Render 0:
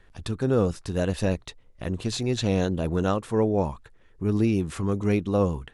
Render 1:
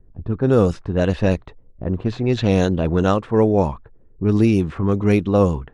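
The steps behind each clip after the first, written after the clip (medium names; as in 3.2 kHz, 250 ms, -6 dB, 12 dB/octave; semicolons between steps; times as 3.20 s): level-controlled noise filter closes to 300 Hz, open at -17.5 dBFS; trim +7 dB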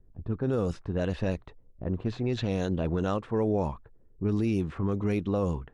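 peak limiter -10.5 dBFS, peak gain reduction 6.5 dB; trim -8 dB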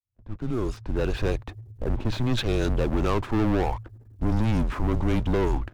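fade-in on the opening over 1.56 s; waveshaping leveller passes 3; frequency shift -120 Hz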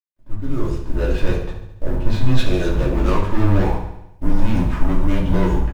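companding laws mixed up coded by A; feedback delay 71 ms, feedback 57%, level -9.5 dB; simulated room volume 150 m³, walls furnished, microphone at 2.7 m; trim -2.5 dB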